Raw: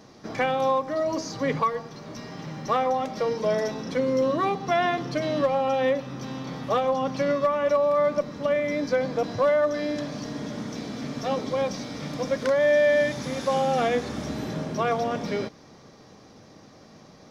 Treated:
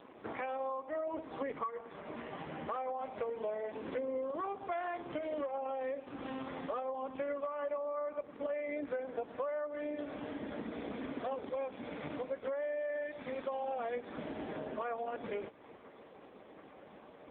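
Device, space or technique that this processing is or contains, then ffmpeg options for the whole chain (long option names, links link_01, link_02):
voicemail: -af "highpass=310,lowpass=3200,acompressor=threshold=-36dB:ratio=8,volume=1.5dB" -ar 8000 -c:a libopencore_amrnb -b:a 4750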